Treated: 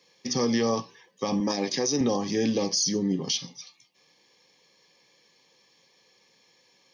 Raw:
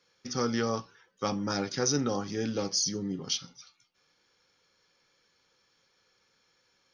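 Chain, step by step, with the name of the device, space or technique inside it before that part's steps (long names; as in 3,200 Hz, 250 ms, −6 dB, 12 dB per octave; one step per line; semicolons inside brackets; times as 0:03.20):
PA system with an anti-feedback notch (high-pass filter 130 Hz 24 dB per octave; Butterworth band-reject 1,400 Hz, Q 2.7; brickwall limiter −24 dBFS, peak gain reduction 9 dB)
0:01.40–0:02.01: high-pass filter 180 Hz 12 dB per octave
level +8 dB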